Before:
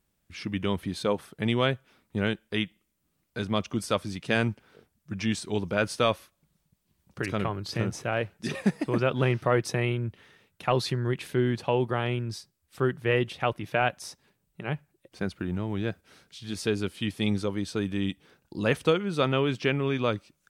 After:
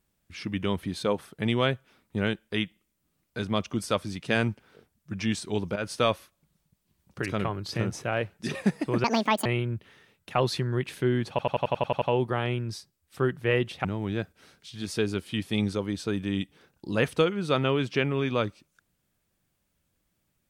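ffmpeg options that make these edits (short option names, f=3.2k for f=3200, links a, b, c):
-filter_complex "[0:a]asplit=13[a][b][c][d][e][f][g][h][i][j][k][l][m];[a]atrim=end=5.76,asetpts=PTS-STARTPTS,afade=t=out:st=5.756:d=0.004:c=hsin:silence=0.251189[n];[b]atrim=start=5.76:end=9.044,asetpts=PTS-STARTPTS,afade=t=in:d=0.27:c=qsin:silence=0.251189[o];[c]atrim=start=9.04:end=9.78,asetpts=PTS-STARTPTS,asetrate=78498,aresample=44100[p];[d]atrim=start=9.776:end=11.712[q];[e]atrim=start=11.618:end=11.712[r];[f]atrim=start=11.618:end=11.712[s];[g]atrim=start=11.618:end=11.712[t];[h]atrim=start=11.618:end=11.712[u];[i]atrim=start=11.618:end=11.712[v];[j]atrim=start=11.618:end=11.712[w];[k]atrim=start=11.618:end=11.712[x];[l]atrim=start=11.618:end=13.452[y];[m]atrim=start=15.528[z];[n][o]concat=n=2:v=0:a=1[aa];[aa][p]acrossfade=d=0.004:c1=hsin:c2=hsin[ab];[ab][q]acrossfade=d=0.004:c1=hsin:c2=hsin[ac];[ac][r]acrossfade=d=0.004:c1=hsin:c2=hsin[ad];[ad][s]acrossfade=d=0.004:c1=hsin:c2=hsin[ae];[ae][t]acrossfade=d=0.004:c1=hsin:c2=hsin[af];[af][u]acrossfade=d=0.004:c1=hsin:c2=hsin[ag];[ag][v]acrossfade=d=0.004:c1=hsin:c2=hsin[ah];[ah][w]acrossfade=d=0.004:c1=hsin:c2=hsin[ai];[ai][x]acrossfade=d=0.004:c1=hsin:c2=hsin[aj];[aj][y]acrossfade=d=0.004:c1=hsin:c2=hsin[ak];[ak][z]acrossfade=d=0.004:c1=hsin:c2=hsin"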